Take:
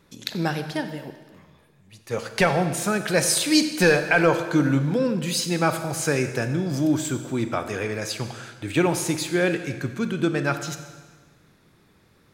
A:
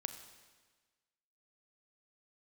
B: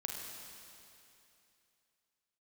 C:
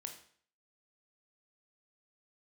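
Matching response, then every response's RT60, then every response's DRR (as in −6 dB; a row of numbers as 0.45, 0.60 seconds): A; 1.4, 2.8, 0.55 seconds; 8.5, 0.0, 4.0 decibels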